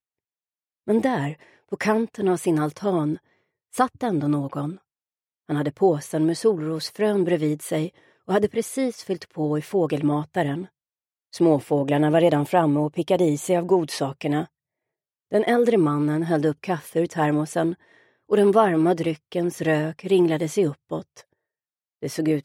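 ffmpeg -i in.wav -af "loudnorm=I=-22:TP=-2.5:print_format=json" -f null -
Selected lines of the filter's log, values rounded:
"input_i" : "-23.0",
"input_tp" : "-4.7",
"input_lra" : "3.5",
"input_thresh" : "-33.5",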